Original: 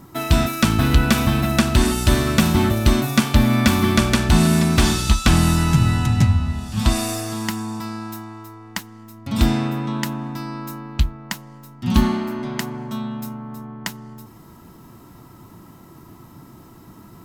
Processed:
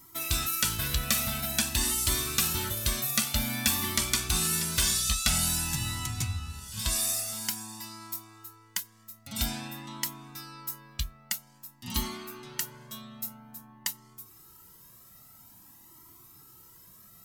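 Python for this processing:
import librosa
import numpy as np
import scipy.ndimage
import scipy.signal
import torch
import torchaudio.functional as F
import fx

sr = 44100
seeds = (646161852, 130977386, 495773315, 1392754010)

y = scipy.signal.lfilter([1.0, -0.9], [1.0], x)
y = fx.comb_cascade(y, sr, direction='rising', hz=0.5)
y = F.gain(torch.from_numpy(y), 5.5).numpy()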